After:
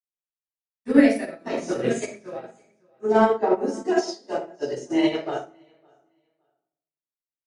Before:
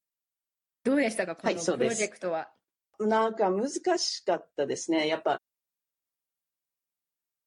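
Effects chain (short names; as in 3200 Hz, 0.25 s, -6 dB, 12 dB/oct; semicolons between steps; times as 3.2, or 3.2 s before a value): feedback echo 0.562 s, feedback 20%, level -15 dB; reverb RT60 0.75 s, pre-delay 8 ms, DRR -6.5 dB; upward expander 2.5:1, over -26 dBFS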